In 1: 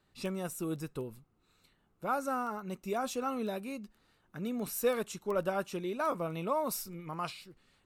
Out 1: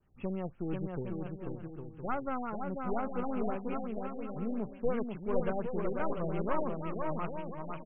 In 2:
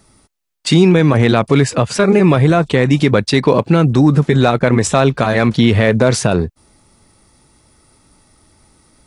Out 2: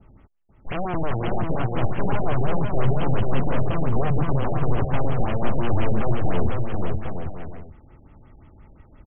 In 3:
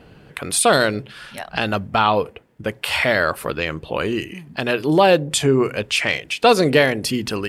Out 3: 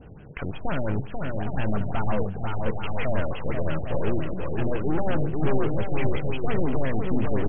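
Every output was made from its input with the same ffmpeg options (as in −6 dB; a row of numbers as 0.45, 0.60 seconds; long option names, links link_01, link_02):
-filter_complex "[0:a]aresample=11025,aeval=exprs='(mod(2.37*val(0)+1,2)-1)/2.37':channel_layout=same,aresample=44100,aeval=exprs='(tanh(20*val(0)+0.55)-tanh(0.55))/20':channel_layout=same,lowshelf=frequency=120:gain=10,asplit=2[link_01][link_02];[link_02]aecho=0:1:490|808.5|1016|1150|1238:0.631|0.398|0.251|0.158|0.1[link_03];[link_01][link_03]amix=inputs=2:normalize=0,adynamicequalizer=threshold=0.00708:dfrequency=2000:dqfactor=1.3:tfrequency=2000:tqfactor=1.3:attack=5:release=100:ratio=0.375:range=2.5:mode=cutabove:tftype=bell,afftfilt=real='re*lt(b*sr/1024,800*pow(3400/800,0.5+0.5*sin(2*PI*5.7*pts/sr)))':imag='im*lt(b*sr/1024,800*pow(3400/800,0.5+0.5*sin(2*PI*5.7*pts/sr)))':win_size=1024:overlap=0.75"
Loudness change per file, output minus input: −1.0, −13.5, −10.0 LU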